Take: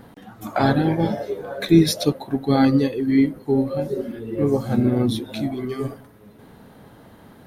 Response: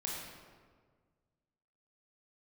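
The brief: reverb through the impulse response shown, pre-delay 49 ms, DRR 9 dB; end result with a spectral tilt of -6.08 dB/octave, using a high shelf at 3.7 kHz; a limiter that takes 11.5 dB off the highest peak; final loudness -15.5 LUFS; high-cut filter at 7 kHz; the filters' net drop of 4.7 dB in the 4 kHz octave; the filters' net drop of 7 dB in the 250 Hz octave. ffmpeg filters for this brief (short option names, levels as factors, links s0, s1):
-filter_complex "[0:a]lowpass=7000,equalizer=f=250:t=o:g=-9,highshelf=f=3700:g=4.5,equalizer=f=4000:t=o:g=-8,alimiter=limit=0.106:level=0:latency=1,asplit=2[s0][s1];[1:a]atrim=start_sample=2205,adelay=49[s2];[s1][s2]afir=irnorm=-1:irlink=0,volume=0.299[s3];[s0][s3]amix=inputs=2:normalize=0,volume=5.01"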